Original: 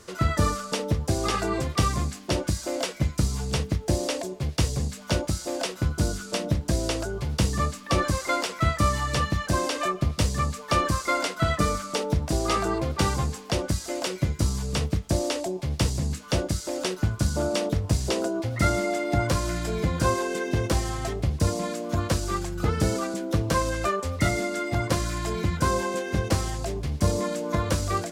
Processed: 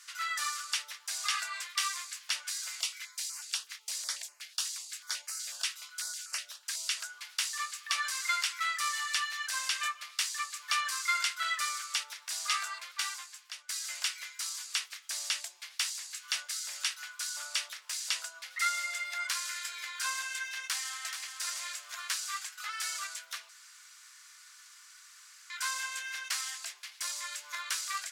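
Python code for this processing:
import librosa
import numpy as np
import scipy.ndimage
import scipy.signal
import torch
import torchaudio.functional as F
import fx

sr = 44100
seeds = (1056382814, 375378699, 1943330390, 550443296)

y = fx.filter_held_notch(x, sr, hz=8.1, low_hz=600.0, high_hz=3500.0, at=(2.68, 6.97))
y = fx.echo_throw(y, sr, start_s=20.64, length_s=0.65, ms=430, feedback_pct=50, wet_db=-7.0)
y = fx.edit(y, sr, fx.fade_out_to(start_s=12.69, length_s=1.0, floor_db=-16.5),
    fx.room_tone_fill(start_s=23.49, length_s=2.01), tone=tone)
y = scipy.signal.sosfilt(scipy.signal.cheby2(4, 80, 250.0, 'highpass', fs=sr, output='sos'), y)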